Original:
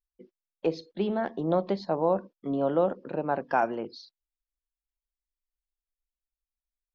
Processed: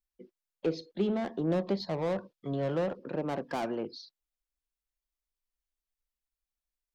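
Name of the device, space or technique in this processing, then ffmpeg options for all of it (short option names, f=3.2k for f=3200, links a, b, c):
one-band saturation: -filter_complex "[0:a]asettb=1/sr,asplit=3[a][b][c];[a]atrim=end=1.804[d];[b]atrim=start=1.8:end=2.99,asetpts=PTS-STARTPTS,afade=t=in:d=0.004:c=qsin,afade=t=out:st=1.186:d=0.004:c=qsin,equalizer=f=125:t=o:w=1:g=7,equalizer=f=250:t=o:w=1:g=-8,equalizer=f=4k:t=o:w=1:g=6[e];[c]atrim=start=2.986[f];[d][e]acrossfade=d=0.004:c1=hsin:c2=qsin[g];[g][f]acrossfade=d=0.004:c1=qsin:c2=hsin,acrossover=split=440|4200[h][i][j];[i]asoftclip=type=tanh:threshold=-35dB[k];[h][k][j]amix=inputs=3:normalize=0"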